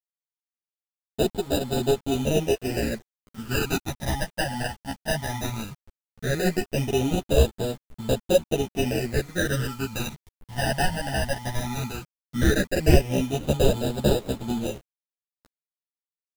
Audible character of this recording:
aliases and images of a low sample rate 1,100 Hz, jitter 0%
phaser sweep stages 12, 0.16 Hz, lowest notch 400–2,000 Hz
a quantiser's noise floor 8 bits, dither none
a shimmering, thickened sound

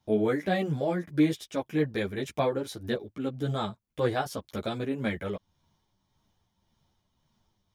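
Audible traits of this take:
tremolo triangle 1.8 Hz, depth 45%
a shimmering, thickened sound

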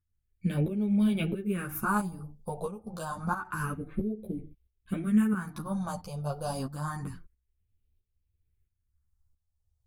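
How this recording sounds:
phaser sweep stages 4, 0.28 Hz, lowest notch 310–1,200 Hz
tremolo saw up 1.5 Hz, depth 70%
a shimmering, thickened sound

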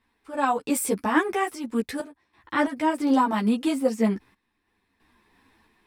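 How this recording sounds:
sample-and-hold tremolo 3 Hz, depth 85%
a shimmering, thickened sound

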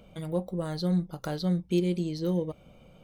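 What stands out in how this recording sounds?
background noise floor −56 dBFS
spectral slope −7.0 dB per octave

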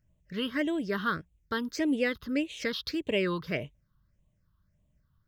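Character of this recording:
phaser sweep stages 6, 1.7 Hz, lowest notch 590–1,400 Hz

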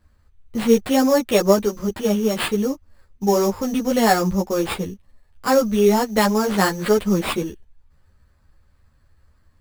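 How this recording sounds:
aliases and images of a low sample rate 6,100 Hz, jitter 0%
a shimmering, thickened sound

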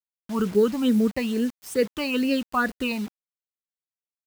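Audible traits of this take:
phaser sweep stages 8, 2.3 Hz, lowest notch 430–1,100 Hz
a quantiser's noise floor 8 bits, dither none

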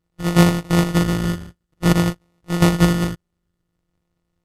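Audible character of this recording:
a buzz of ramps at a fixed pitch in blocks of 256 samples
phaser sweep stages 6, 0.52 Hz, lowest notch 680–1,400 Hz
aliases and images of a low sample rate 1,600 Hz, jitter 0%
SBC

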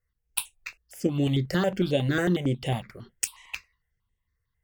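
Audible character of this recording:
notches that jump at a steady rate 11 Hz 910–4,800 Hz

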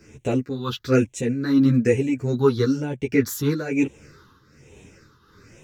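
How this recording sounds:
phaser sweep stages 6, 1.1 Hz, lowest notch 610–1,300 Hz
tremolo triangle 1.3 Hz, depth 75%
a shimmering, thickened sound

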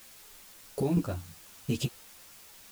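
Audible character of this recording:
chopped level 3.1 Hz, depth 60%, duty 15%
a quantiser's noise floor 10 bits, dither triangular
a shimmering, thickened sound

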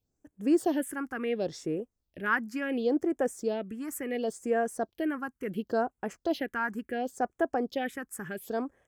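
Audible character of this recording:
phaser sweep stages 4, 0.71 Hz, lowest notch 560–4,300 Hz

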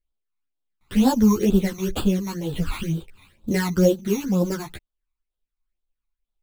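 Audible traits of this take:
aliases and images of a low sample rate 6,100 Hz, jitter 0%
phaser sweep stages 12, 2.1 Hz, lowest notch 510–2,100 Hz
tremolo triangle 3.2 Hz, depth 40%
a shimmering, thickened sound

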